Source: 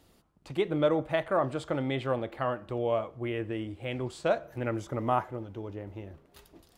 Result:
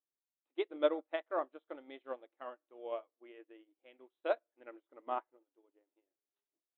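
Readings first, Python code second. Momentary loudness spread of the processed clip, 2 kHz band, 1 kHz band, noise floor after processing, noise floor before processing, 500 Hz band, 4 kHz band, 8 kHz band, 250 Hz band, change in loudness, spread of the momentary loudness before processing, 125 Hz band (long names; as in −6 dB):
22 LU, −10.5 dB, −10.0 dB, below −85 dBFS, −63 dBFS, −8.5 dB, −10.5 dB, can't be measured, −14.5 dB, −8.0 dB, 13 LU, below −40 dB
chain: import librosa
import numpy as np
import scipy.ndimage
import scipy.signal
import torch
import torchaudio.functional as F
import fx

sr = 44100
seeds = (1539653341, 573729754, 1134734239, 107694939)

y = fx.brickwall_bandpass(x, sr, low_hz=250.0, high_hz=4100.0)
y = fx.upward_expand(y, sr, threshold_db=-46.0, expansion=2.5)
y = y * librosa.db_to_amplitude(-2.5)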